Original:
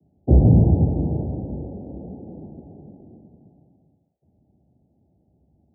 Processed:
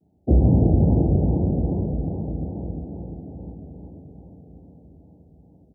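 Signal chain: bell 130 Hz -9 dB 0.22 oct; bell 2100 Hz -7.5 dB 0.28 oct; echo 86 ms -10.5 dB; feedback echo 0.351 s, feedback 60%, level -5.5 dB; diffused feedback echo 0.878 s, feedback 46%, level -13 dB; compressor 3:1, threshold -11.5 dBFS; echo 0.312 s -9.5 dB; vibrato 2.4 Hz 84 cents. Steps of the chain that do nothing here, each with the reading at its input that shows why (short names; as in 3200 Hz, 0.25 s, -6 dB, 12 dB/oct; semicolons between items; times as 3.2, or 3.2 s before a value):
bell 2100 Hz: input band ends at 850 Hz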